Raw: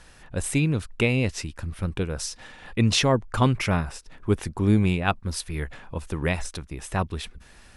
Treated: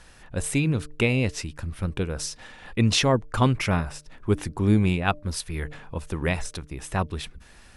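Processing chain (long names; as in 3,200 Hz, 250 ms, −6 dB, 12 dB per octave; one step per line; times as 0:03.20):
hum removal 149.3 Hz, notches 4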